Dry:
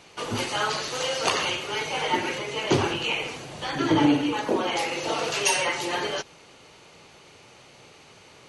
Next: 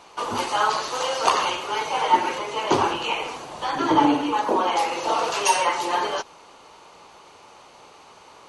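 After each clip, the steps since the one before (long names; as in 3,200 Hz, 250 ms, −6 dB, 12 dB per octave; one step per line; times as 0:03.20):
graphic EQ with 10 bands 125 Hz −9 dB, 1,000 Hz +11 dB, 2,000 Hz −4 dB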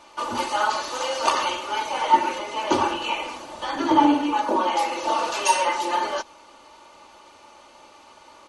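comb filter 3.4 ms, depth 60%
level −2.5 dB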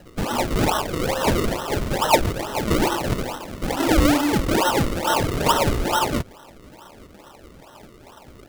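in parallel at −5 dB: wave folding −20 dBFS
on the sum: sample-and-hold swept by an LFO 37×, swing 100% 2.3 Hz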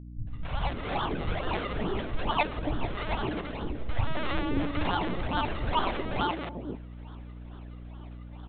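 linear-prediction vocoder at 8 kHz pitch kept
three-band delay without the direct sound lows, highs, mids 270/530 ms, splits 150/520 Hz
mains hum 60 Hz, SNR 12 dB
level −7 dB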